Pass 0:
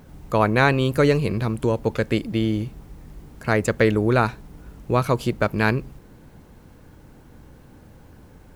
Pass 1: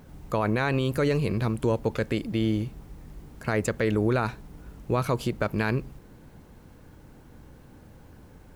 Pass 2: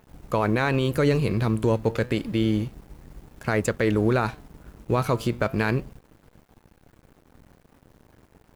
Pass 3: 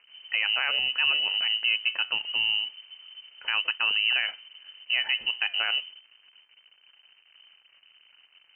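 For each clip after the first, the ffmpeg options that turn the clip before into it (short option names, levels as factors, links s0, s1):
-af "alimiter=limit=0.237:level=0:latency=1:release=49,volume=0.75"
-af "aeval=exprs='sgn(val(0))*max(abs(val(0))-0.00376,0)':c=same,flanger=delay=1.1:depth=8.1:regen=89:speed=0.3:shape=sinusoidal,volume=2.37"
-af "asoftclip=type=tanh:threshold=0.266,lowpass=f=2600:t=q:w=0.5098,lowpass=f=2600:t=q:w=0.6013,lowpass=f=2600:t=q:w=0.9,lowpass=f=2600:t=q:w=2.563,afreqshift=-3100,volume=0.708"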